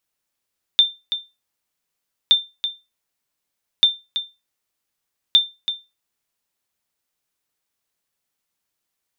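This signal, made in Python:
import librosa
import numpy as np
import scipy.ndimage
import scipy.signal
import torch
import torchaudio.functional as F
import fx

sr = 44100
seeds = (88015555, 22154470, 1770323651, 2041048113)

y = fx.sonar_ping(sr, hz=3580.0, decay_s=0.24, every_s=1.52, pings=4, echo_s=0.33, echo_db=-10.5, level_db=-5.0)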